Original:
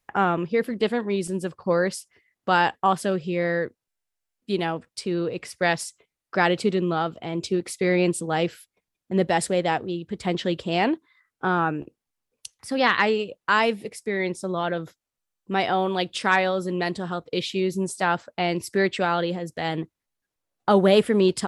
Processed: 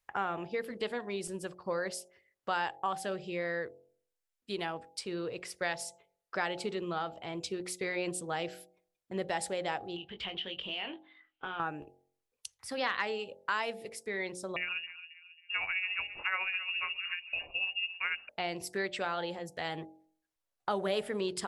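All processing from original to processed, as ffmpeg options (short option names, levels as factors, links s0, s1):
-filter_complex "[0:a]asettb=1/sr,asplit=3[s0][s1][s2];[s0]atrim=end=9.964[s3];[s1]atrim=start=9.96:end=11.6,asetpts=PTS-STARTPTS,afade=t=in:d=0.004:c=qsin,afade=t=out:st=1.636:d=0.004:c=qsin,lowpass=f=3000:t=q:w=7.2,acompressor=threshold=0.0355:ratio=5:attack=3.2:release=140:knee=1:detection=peak,asplit=2[s4][s5];[s5]adelay=21,volume=0.376[s6];[s4][s6]amix=inputs=2:normalize=0,atrim=end_sample=72324[s7];[s2]atrim=start=11.596[s8];[s3][s7]acrossfade=d=0.004:c1=hsin:c2=qsin[s9];[s9][s8]acrossfade=d=0.004:c1=qsin:c2=hsin,asettb=1/sr,asplit=3[s10][s11][s12];[s10]atrim=end=14.564[s13];[s11]atrim=start=14.56:end=18.29,asetpts=PTS-STARTPTS,afade=t=in:d=0.004:c=qsin,afade=t=out:st=3.726:d=0.004:c=qsin,tremolo=f=14:d=0.49,asplit=2[s14][s15];[s15]adelay=271,lowpass=f=1000:p=1,volume=0.211,asplit=2[s16][s17];[s17]adelay=271,lowpass=f=1000:p=1,volume=0.5,asplit=2[s18][s19];[s19]adelay=271,lowpass=f=1000:p=1,volume=0.5,asplit=2[s20][s21];[s21]adelay=271,lowpass=f=1000:p=1,volume=0.5,asplit=2[s22][s23];[s23]adelay=271,lowpass=f=1000:p=1,volume=0.5[s24];[s14][s16][s18][s20][s22][s24]amix=inputs=6:normalize=0,atrim=end_sample=164493,lowpass=f=2600:t=q:w=0.5098,lowpass=f=2600:t=q:w=0.6013,lowpass=f=2600:t=q:w=0.9,lowpass=f=2600:t=q:w=2.563,afreqshift=-3000[s25];[s12]atrim=start=18.286[s26];[s13][s25]acrossfade=d=0.004:c1=hsin:c2=qsin[s27];[s27][s26]acrossfade=d=0.004:c1=qsin:c2=hsin,equalizer=f=210:t=o:w=1.8:g=-9,bandreject=f=45.2:t=h:w=4,bandreject=f=90.4:t=h:w=4,bandreject=f=135.6:t=h:w=4,bandreject=f=180.8:t=h:w=4,bandreject=f=226:t=h:w=4,bandreject=f=271.2:t=h:w=4,bandreject=f=316.4:t=h:w=4,bandreject=f=361.6:t=h:w=4,bandreject=f=406.8:t=h:w=4,bandreject=f=452:t=h:w=4,bandreject=f=497.2:t=h:w=4,bandreject=f=542.4:t=h:w=4,bandreject=f=587.6:t=h:w=4,bandreject=f=632.8:t=h:w=4,bandreject=f=678:t=h:w=4,bandreject=f=723.2:t=h:w=4,bandreject=f=768.4:t=h:w=4,bandreject=f=813.6:t=h:w=4,bandreject=f=858.8:t=h:w=4,acompressor=threshold=0.0398:ratio=2,volume=0.562"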